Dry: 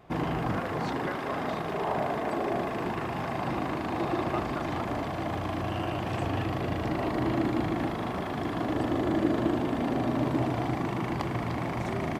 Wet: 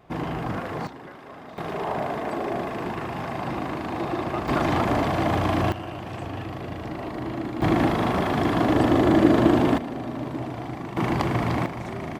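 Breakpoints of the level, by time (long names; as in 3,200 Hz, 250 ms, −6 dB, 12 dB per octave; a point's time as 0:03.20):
+0.5 dB
from 0:00.87 −10.5 dB
from 0:01.58 +1.5 dB
from 0:04.48 +9 dB
from 0:05.72 −3 dB
from 0:07.62 +9 dB
from 0:09.78 −3.5 dB
from 0:10.97 +7 dB
from 0:11.66 −1.5 dB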